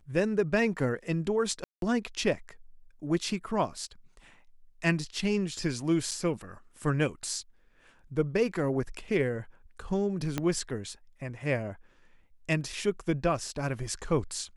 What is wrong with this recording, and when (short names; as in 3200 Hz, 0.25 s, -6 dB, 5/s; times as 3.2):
1.64–1.82 gap 0.182 s
6.11–6.12 gap 6.5 ms
10.38 pop -15 dBFS